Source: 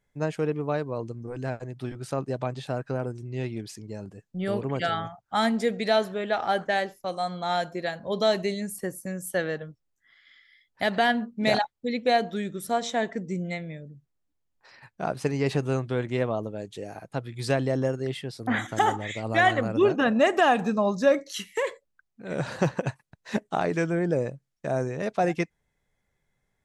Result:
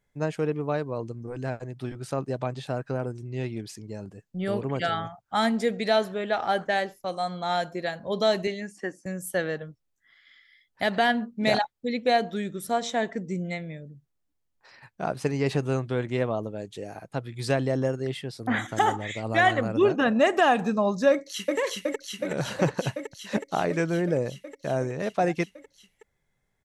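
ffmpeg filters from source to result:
-filter_complex "[0:a]asettb=1/sr,asplit=3[s0][s1][s2];[s0]atrim=end=8.474[s3];[s1]atrim=start=8.47:end=9.06,asetpts=PTS-STARTPTS,afade=t=in:d=0.004:c=qsin,afade=t=out:st=0.586:d=0.004:c=qsin,highpass=250,equalizer=f=300:t=q:w=4:g=4,equalizer=f=520:t=q:w=4:g=-5,equalizer=f=750:t=q:w=4:g=3,equalizer=f=1700:t=q:w=4:g=7,equalizer=f=2800:t=q:w=4:g=4,equalizer=f=4100:t=q:w=4:g=-6,lowpass=f=6300:w=0.5412,lowpass=f=6300:w=1.3066[s4];[s2]atrim=start=9.056[s5];[s3][s4]acrossfade=d=0.004:c1=hsin:c2=qsin[s6];[s6][s5]acrossfade=d=0.004:c1=qsin:c2=hsin,asplit=2[s7][s8];[s8]afade=t=in:st=21.11:d=0.01,afade=t=out:st=21.58:d=0.01,aecho=0:1:370|740|1110|1480|1850|2220|2590|2960|3330|3700|4070|4440:0.944061|0.755249|0.604199|0.483359|0.386687|0.30935|0.24748|0.197984|0.158387|0.12671|0.101368|0.0810942[s9];[s7][s9]amix=inputs=2:normalize=0"

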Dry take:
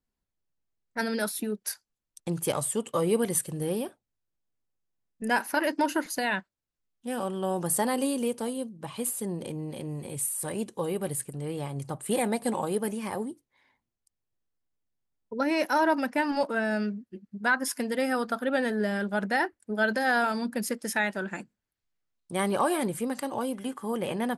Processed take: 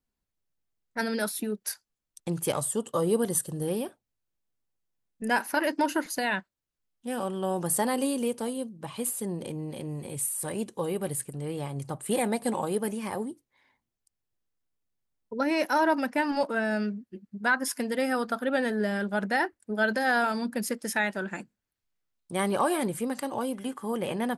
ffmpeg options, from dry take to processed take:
-filter_complex "[0:a]asettb=1/sr,asplit=3[s0][s1][s2];[s0]atrim=end=2.614[s3];[s1]atrim=start=2.61:end=3.68,asetpts=PTS-STARTPTS,afade=t=in:d=0.004:c=qsin,afade=t=out:st=1.066:d=0.004:c=qsin,equalizer=f=2300:w=3.5:g=-13[s4];[s2]atrim=start=3.676[s5];[s3][s4]acrossfade=d=0.004:c1=hsin:c2=qsin[s6];[s6][s5]acrossfade=d=0.004:c1=qsin:c2=hsin"

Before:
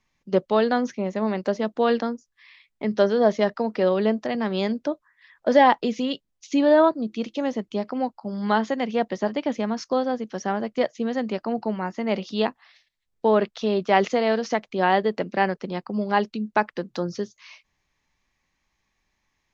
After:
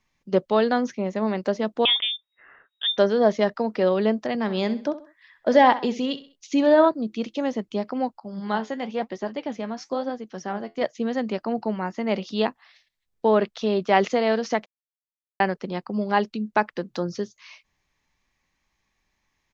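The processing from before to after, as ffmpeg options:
-filter_complex "[0:a]asettb=1/sr,asplit=3[s0][s1][s2];[s0]atrim=end=1.854[s3];[s1]atrim=start=1.85:end=2.98,asetpts=PTS-STARTPTS,afade=t=in:d=0.004:c=qsin,afade=t=out:st=1.126:d=0.004:c=qsin,lowpass=f=3200:t=q:w=0.5098,lowpass=f=3200:t=q:w=0.6013,lowpass=f=3200:t=q:w=0.9,lowpass=f=3200:t=q:w=2.563,afreqshift=-3800[s4];[s2]atrim=start=2.976[s5];[s3][s4]acrossfade=d=0.004:c1=hsin:c2=qsin[s6];[s6][s5]acrossfade=d=0.004:c1=qsin:c2=hsin,asplit=3[s7][s8][s9];[s7]afade=t=out:st=4.46:d=0.02[s10];[s8]aecho=1:1:65|130|195:0.188|0.0678|0.0244,afade=t=in:st=4.46:d=0.02,afade=t=out:st=6.86:d=0.02[s11];[s9]afade=t=in:st=6.86:d=0.02[s12];[s10][s11][s12]amix=inputs=3:normalize=0,asettb=1/sr,asplit=3[s13][s14][s15];[s13]atrim=end=8.204[s16];[s14]atrim=start=8.2:end=10.82,asetpts=PTS-STARTPTS,afade=t=in:d=0.004:c=qsin,afade=t=out:st=2.616:d=0.004:c=qsin,flanger=delay=2.5:depth=9.2:regen=68:speed=1:shape=sinusoidal[s17];[s15]atrim=start=10.816[s18];[s16][s17]acrossfade=d=0.004:c1=hsin:c2=qsin[s19];[s19][s18]acrossfade=d=0.004:c1=qsin:c2=hsin,asplit=3[s20][s21][s22];[s20]atrim=end=14.66,asetpts=PTS-STARTPTS,afade=t=out:st=14.656:d=0.004:c=hsin[s23];[s21]atrim=start=14.66:end=15.4,asetpts=PTS-STARTPTS,volume=0[s24];[s22]atrim=start=15.4,asetpts=PTS-STARTPTS,afade=t=in:d=0.004:c=hsin[s25];[s23][s24][s25]concat=n=3:v=0:a=1"

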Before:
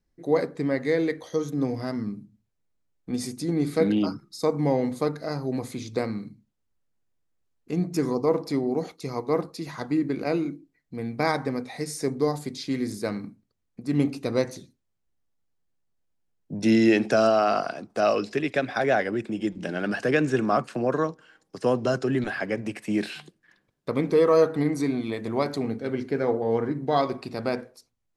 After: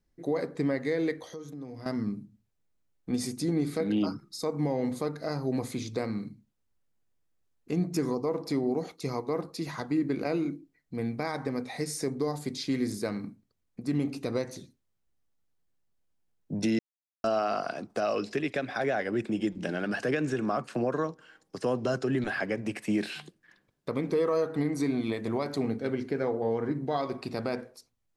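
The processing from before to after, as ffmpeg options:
-filter_complex "[0:a]asettb=1/sr,asplit=3[s0][s1][s2];[s0]atrim=end=1.244[s3];[s1]atrim=start=1.24:end=1.86,asetpts=PTS-STARTPTS,afade=t=in:d=0.004:c=qsin,afade=t=out:st=0.616:d=0.004:c=qsin,acompressor=threshold=0.00708:ratio=3:attack=3.2:release=140:knee=1:detection=peak[s4];[s2]atrim=start=1.856[s5];[s3][s4]acrossfade=d=0.004:c1=hsin:c2=qsin[s6];[s6][s5]acrossfade=d=0.004:c1=qsin:c2=hsin,asplit=3[s7][s8][s9];[s7]atrim=end=16.79,asetpts=PTS-STARTPTS,afade=t=out:st=16.786:d=0.004:c=hsin[s10];[s8]atrim=start=16.79:end=17.24,asetpts=PTS-STARTPTS,volume=0[s11];[s9]atrim=start=17.24,asetpts=PTS-STARTPTS,afade=t=in:d=0.004:c=hsin[s12];[s10][s11][s12]concat=n=3:v=0:a=1,alimiter=limit=0.112:level=0:latency=1:release=235"

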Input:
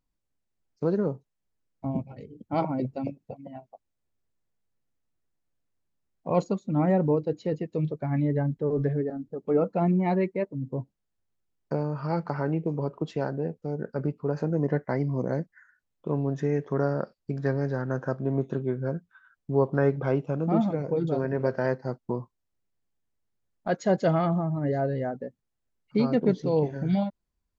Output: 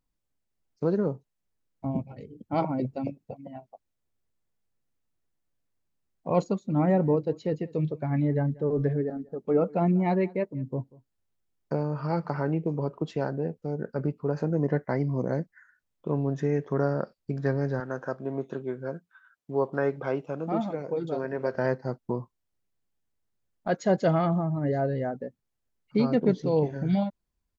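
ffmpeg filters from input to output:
-filter_complex "[0:a]asplit=3[s0][s1][s2];[s0]afade=t=out:st=6.69:d=0.02[s3];[s1]aecho=1:1:188:0.0708,afade=t=in:st=6.69:d=0.02,afade=t=out:st=12.4:d=0.02[s4];[s2]afade=t=in:st=12.4:d=0.02[s5];[s3][s4][s5]amix=inputs=3:normalize=0,asettb=1/sr,asplit=3[s6][s7][s8];[s6]atrim=end=17.804[s9];[s7]atrim=start=17.8:end=21.55,asetpts=PTS-STARTPTS,afade=t=in:d=0.004:c=qsin,afade=t=out:st=3.746:d=0.004:c=qsin,highpass=f=400:p=1[s10];[s8]atrim=start=21.546[s11];[s9][s10]acrossfade=d=0.004:c1=hsin:c2=qsin[s12];[s12][s11]acrossfade=d=0.004:c1=qsin:c2=hsin"

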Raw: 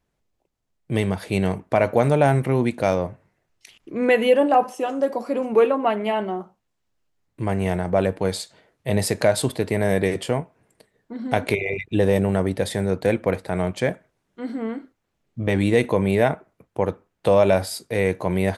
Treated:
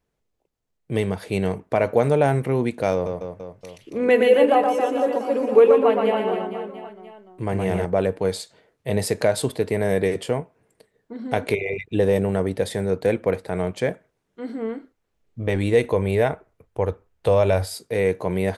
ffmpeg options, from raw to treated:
-filter_complex "[0:a]asettb=1/sr,asplit=3[s0][s1][s2];[s0]atrim=end=2.944[s3];[s1]atrim=start=2.94:end=7.85,asetpts=PTS-STARTPTS,afade=t=in:d=0.004:c=qsin,afade=t=out:st=4.906:d=0.004:c=qsin,aecho=1:1:120|270|457.5|691.9|984.8:0.631|0.398|0.251|0.158|0.1,atrim=end_sample=216531[s4];[s2]atrim=start=7.846[s5];[s3][s4]acrossfade=d=0.004:c1=hsin:c2=qsin[s6];[s6][s5]acrossfade=d=0.004:c1=qsin:c2=hsin,asettb=1/sr,asplit=3[s7][s8][s9];[s7]atrim=end=14.584[s10];[s8]atrim=start=14.58:end=17.75,asetpts=PTS-STARTPTS,afade=t=in:d=0.004:c=qsin,afade=t=out:st=3.166:d=0.004:c=qsin,asubboost=boost=10:cutoff=74[s11];[s9]atrim=start=17.746[s12];[s10][s11]acrossfade=d=0.004:c1=hsin:c2=qsin[s13];[s13][s12]acrossfade=d=0.004:c1=qsin:c2=hsin,equalizer=f=450:t=o:w=0.32:g=6,volume=0.75"

